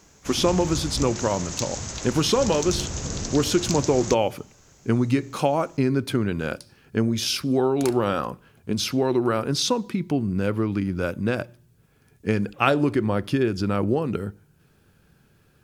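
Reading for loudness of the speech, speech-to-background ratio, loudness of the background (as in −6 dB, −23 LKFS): −24.0 LKFS, 7.0 dB, −31.0 LKFS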